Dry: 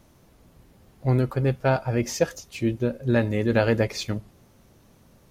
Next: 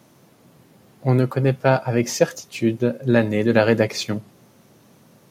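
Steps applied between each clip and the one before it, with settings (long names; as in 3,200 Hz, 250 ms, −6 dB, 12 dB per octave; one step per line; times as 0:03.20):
high-pass filter 120 Hz 24 dB per octave
level +5 dB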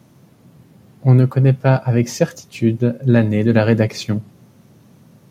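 bass and treble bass +10 dB, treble −1 dB
level −1 dB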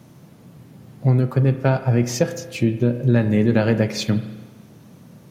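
downward compressor 2.5 to 1, threshold −18 dBFS, peak gain reduction 8 dB
spring reverb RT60 1.3 s, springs 33 ms, chirp 50 ms, DRR 10 dB
level +2 dB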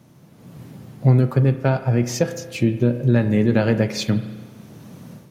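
automatic gain control gain up to 11 dB
level −4.5 dB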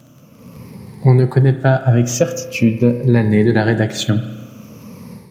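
rippled gain that drifts along the octave scale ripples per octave 0.87, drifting −0.46 Hz, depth 12 dB
surface crackle 26 per second −40 dBFS
level +3.5 dB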